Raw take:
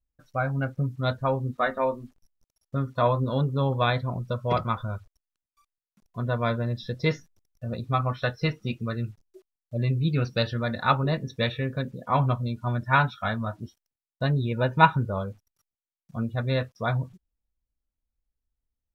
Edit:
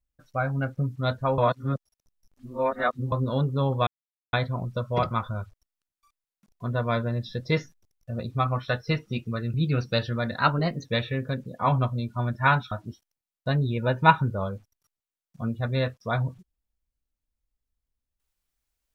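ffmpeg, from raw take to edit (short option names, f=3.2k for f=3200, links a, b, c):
-filter_complex "[0:a]asplit=8[a][b][c][d][e][f][g][h];[a]atrim=end=1.382[i];[b]atrim=start=1.378:end=3.122,asetpts=PTS-STARTPTS,areverse[j];[c]atrim=start=3.118:end=3.87,asetpts=PTS-STARTPTS,afade=t=out:st=0.748:d=0.004:c=hsin,apad=pad_dur=0.46[k];[d]atrim=start=3.87:end=9.082,asetpts=PTS-STARTPTS,afade=t=in:d=0.004:c=hsin[l];[e]atrim=start=9.978:end=10.834[m];[f]atrim=start=10.83:end=11.33,asetpts=PTS-STARTPTS,asetrate=47628,aresample=44100[n];[g]atrim=start=11.326:end=13.192[o];[h]atrim=start=13.458[p];[i][j]acrossfade=d=0.004:c1=hsin:c2=hsin[q];[k][l]concat=n=2:v=0:a=1[r];[q][r]acrossfade=d=0.004:c1=hsin:c2=hsin[s];[s][m]acrossfade=d=0.004:c1=hsin:c2=hsin[t];[t][n]acrossfade=d=0.004:c1=hsin:c2=hsin[u];[u][o]acrossfade=d=0.004:c1=hsin:c2=hsin[v];[v][p]acrossfade=d=0.004:c1=hsin:c2=hsin"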